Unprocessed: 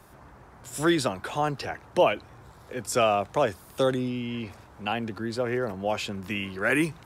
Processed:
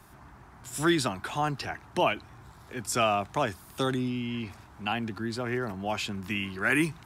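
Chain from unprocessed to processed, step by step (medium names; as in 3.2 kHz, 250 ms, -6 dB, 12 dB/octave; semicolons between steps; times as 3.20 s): peaking EQ 510 Hz -12 dB 0.48 oct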